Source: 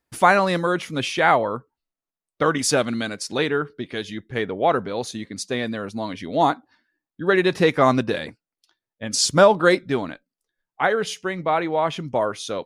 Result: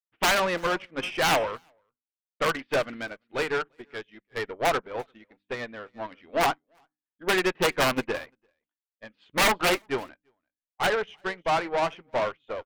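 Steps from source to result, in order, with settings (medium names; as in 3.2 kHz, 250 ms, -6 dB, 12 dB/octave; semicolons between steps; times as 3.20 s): steep low-pass 3.1 kHz 48 dB/octave; integer overflow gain 9 dB; peaking EQ 110 Hz -14.5 dB 2.7 oct; valve stage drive 27 dB, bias 0.45; hum notches 50/100/150/200/250/300 Hz; delay 342 ms -15.5 dB; upward expansion 2.5:1, over -51 dBFS; trim +8.5 dB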